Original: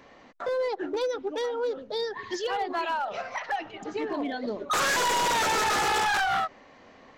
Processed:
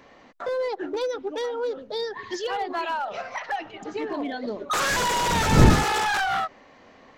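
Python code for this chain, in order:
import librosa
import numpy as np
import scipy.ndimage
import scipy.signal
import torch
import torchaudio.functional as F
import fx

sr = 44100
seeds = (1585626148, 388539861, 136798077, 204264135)

y = fx.dmg_wind(x, sr, seeds[0], corner_hz=220.0, level_db=-22.0, at=(4.89, 5.83), fade=0.02)
y = F.gain(torch.from_numpy(y), 1.0).numpy()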